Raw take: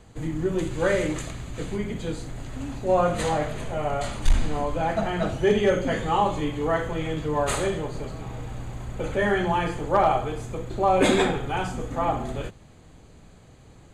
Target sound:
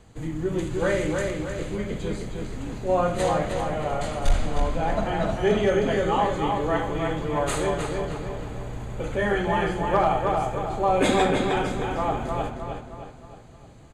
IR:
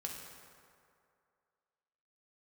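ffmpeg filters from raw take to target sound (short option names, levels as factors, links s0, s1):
-filter_complex "[0:a]asplit=2[s0][s1];[s1]adelay=310,lowpass=f=4200:p=1,volume=0.668,asplit=2[s2][s3];[s3]adelay=310,lowpass=f=4200:p=1,volume=0.48,asplit=2[s4][s5];[s5]adelay=310,lowpass=f=4200:p=1,volume=0.48,asplit=2[s6][s7];[s7]adelay=310,lowpass=f=4200:p=1,volume=0.48,asplit=2[s8][s9];[s9]adelay=310,lowpass=f=4200:p=1,volume=0.48,asplit=2[s10][s11];[s11]adelay=310,lowpass=f=4200:p=1,volume=0.48[s12];[s0][s2][s4][s6][s8][s10][s12]amix=inputs=7:normalize=0,volume=0.841"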